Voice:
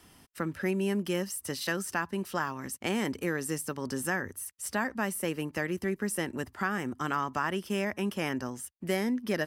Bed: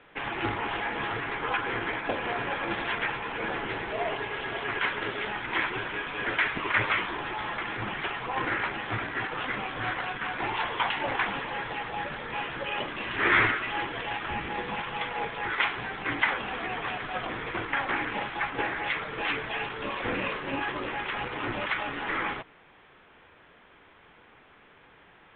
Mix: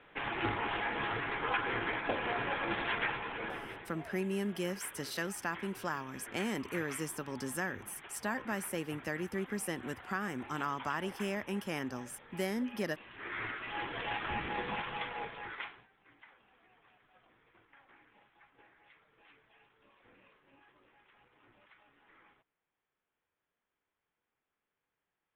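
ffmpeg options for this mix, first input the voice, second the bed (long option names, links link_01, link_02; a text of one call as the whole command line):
ffmpeg -i stem1.wav -i stem2.wav -filter_complex "[0:a]adelay=3500,volume=-5.5dB[link_01];[1:a]volume=11.5dB,afade=type=out:start_time=3.06:duration=0.87:silence=0.16788,afade=type=in:start_time=13.37:duration=0.71:silence=0.16788,afade=type=out:start_time=14.71:duration=1.16:silence=0.0334965[link_02];[link_01][link_02]amix=inputs=2:normalize=0" out.wav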